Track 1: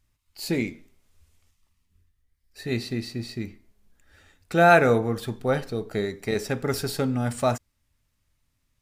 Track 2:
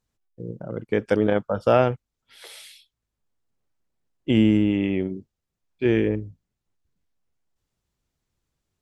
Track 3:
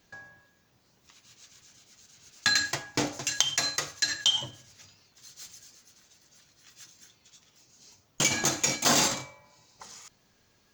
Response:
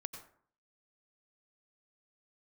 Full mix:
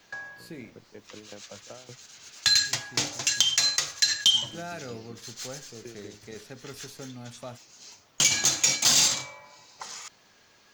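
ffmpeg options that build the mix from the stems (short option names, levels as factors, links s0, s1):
-filter_complex "[0:a]volume=0.15[s0];[1:a]alimiter=limit=0.158:level=0:latency=1,aeval=exprs='val(0)*pow(10,-19*if(lt(mod(5.3*n/s,1),2*abs(5.3)/1000),1-mod(5.3*n/s,1)/(2*abs(5.3)/1000),(mod(5.3*n/s,1)-2*abs(5.3)/1000)/(1-2*abs(5.3)/1000))/20)':c=same,volume=0.178[s1];[2:a]asplit=2[s2][s3];[s3]highpass=f=720:p=1,volume=4.47,asoftclip=type=tanh:threshold=0.531[s4];[s2][s4]amix=inputs=2:normalize=0,lowpass=f=4400:p=1,volume=0.501,volume=1.33[s5];[s0][s1][s5]amix=inputs=3:normalize=0,acrossover=split=160|3000[s6][s7][s8];[s7]acompressor=threshold=0.0178:ratio=6[s9];[s6][s9][s8]amix=inputs=3:normalize=0"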